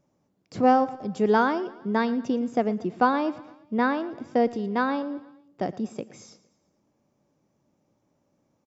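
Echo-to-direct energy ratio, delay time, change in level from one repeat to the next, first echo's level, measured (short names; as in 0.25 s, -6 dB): -17.5 dB, 0.115 s, -5.5 dB, -19.0 dB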